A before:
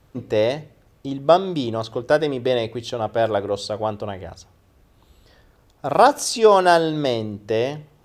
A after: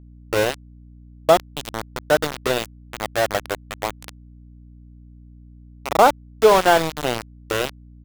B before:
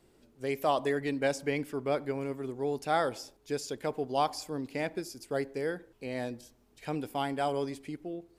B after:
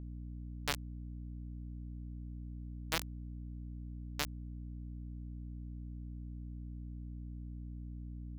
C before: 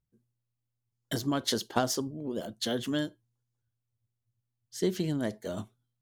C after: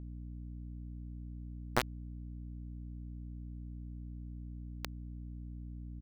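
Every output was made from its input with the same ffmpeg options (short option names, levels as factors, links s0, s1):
-af "aresample=8000,aresample=44100,aeval=exprs='val(0)*gte(abs(val(0)),0.15)':c=same,aeval=exprs='val(0)+0.00708*(sin(2*PI*60*n/s)+sin(2*PI*2*60*n/s)/2+sin(2*PI*3*60*n/s)/3+sin(2*PI*4*60*n/s)/4+sin(2*PI*5*60*n/s)/5)':c=same"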